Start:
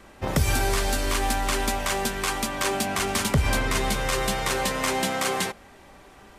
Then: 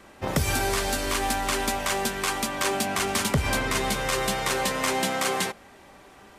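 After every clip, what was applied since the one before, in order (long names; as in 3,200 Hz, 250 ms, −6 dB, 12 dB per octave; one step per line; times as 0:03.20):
low-shelf EQ 65 Hz −10.5 dB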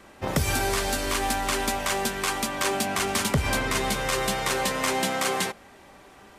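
no processing that can be heard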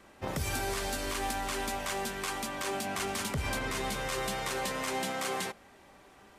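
brickwall limiter −16.5 dBFS, peak gain reduction 6 dB
level −6.5 dB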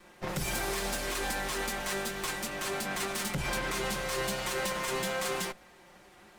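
lower of the sound and its delayed copy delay 5.6 ms
level +2.5 dB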